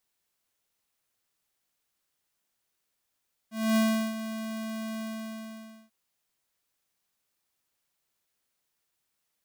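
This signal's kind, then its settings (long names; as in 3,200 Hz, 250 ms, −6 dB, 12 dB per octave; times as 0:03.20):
note with an ADSR envelope square 221 Hz, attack 253 ms, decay 366 ms, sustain −12.5 dB, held 1.48 s, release 911 ms −22.5 dBFS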